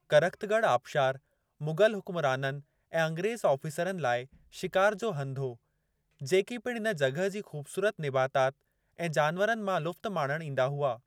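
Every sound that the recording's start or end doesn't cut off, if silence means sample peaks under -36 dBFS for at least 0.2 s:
1.62–2.57
2.94–4.23
4.57–5.52
6.21–8.5

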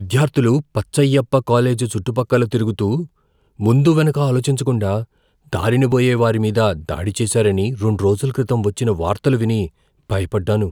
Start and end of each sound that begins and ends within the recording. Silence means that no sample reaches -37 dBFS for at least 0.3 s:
3.59–5.04
5.52–9.68

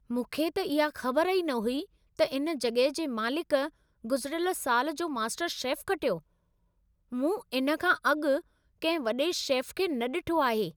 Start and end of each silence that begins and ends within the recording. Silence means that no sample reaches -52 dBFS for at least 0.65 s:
6.2–7.12

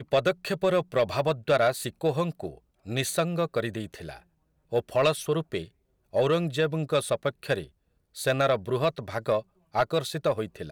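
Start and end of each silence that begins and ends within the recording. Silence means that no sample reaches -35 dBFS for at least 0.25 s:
2.51–2.87
4.17–4.73
5.64–6.14
7.64–8.17
9.4–9.74

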